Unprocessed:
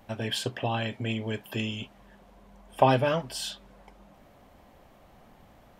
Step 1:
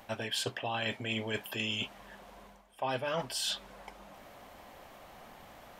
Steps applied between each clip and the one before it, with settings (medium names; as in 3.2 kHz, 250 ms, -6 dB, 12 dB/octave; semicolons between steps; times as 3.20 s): bass shelf 400 Hz -12 dB; reverse; compression 10:1, threshold -39 dBFS, peak gain reduction 22 dB; reverse; trim +8 dB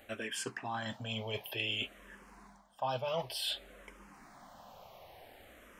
barber-pole phaser -0.55 Hz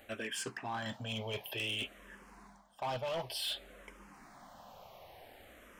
hard clipper -32.5 dBFS, distortion -13 dB